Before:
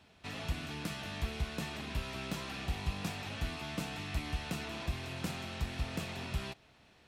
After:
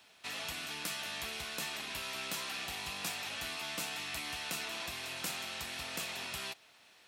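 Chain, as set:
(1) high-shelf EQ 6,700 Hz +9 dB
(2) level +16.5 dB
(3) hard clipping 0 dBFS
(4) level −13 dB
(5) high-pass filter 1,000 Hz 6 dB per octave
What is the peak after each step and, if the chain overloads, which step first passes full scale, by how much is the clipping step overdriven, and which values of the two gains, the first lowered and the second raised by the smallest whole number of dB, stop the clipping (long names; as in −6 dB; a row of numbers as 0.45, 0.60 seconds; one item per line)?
−22.5, −6.0, −6.0, −19.0, −22.0 dBFS
no step passes full scale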